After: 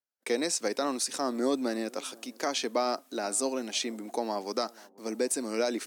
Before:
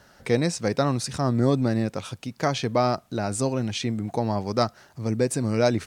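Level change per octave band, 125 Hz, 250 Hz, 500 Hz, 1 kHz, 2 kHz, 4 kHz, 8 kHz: below −25 dB, −8.0 dB, −5.5 dB, −5.5 dB, −4.0 dB, −1.0 dB, +2.0 dB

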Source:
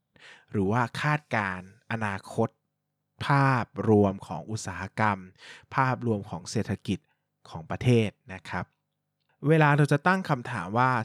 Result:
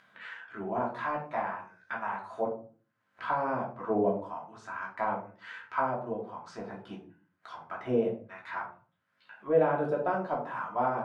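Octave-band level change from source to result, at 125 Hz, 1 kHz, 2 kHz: −17.5, −4.0, −9.0 decibels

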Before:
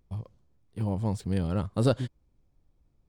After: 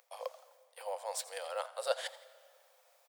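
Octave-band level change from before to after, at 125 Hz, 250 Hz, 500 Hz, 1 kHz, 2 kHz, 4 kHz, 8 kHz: below −40 dB, below −40 dB, −5.5 dB, −1.0 dB, +1.5 dB, +1.0 dB, +6.0 dB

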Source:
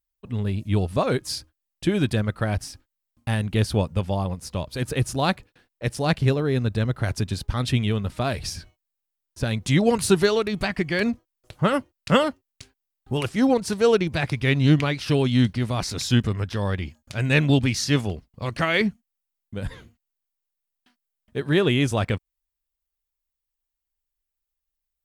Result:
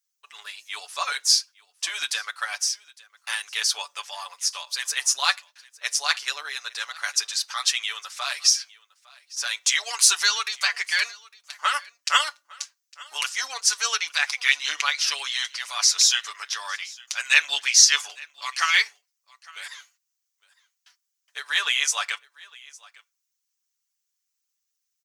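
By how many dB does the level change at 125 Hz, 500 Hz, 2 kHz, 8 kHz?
below −40 dB, −23.0 dB, +5.0 dB, +14.5 dB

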